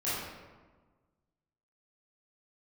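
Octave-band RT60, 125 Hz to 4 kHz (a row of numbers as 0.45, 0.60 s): 1.8, 1.6, 1.4, 1.3, 1.1, 0.75 s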